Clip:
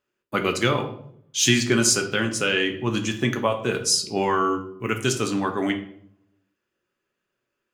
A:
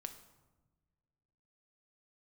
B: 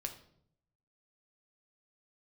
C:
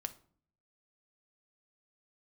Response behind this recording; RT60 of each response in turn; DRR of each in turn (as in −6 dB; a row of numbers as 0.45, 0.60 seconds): B; 1.3, 0.65, 0.50 seconds; 7.0, 4.5, 8.0 decibels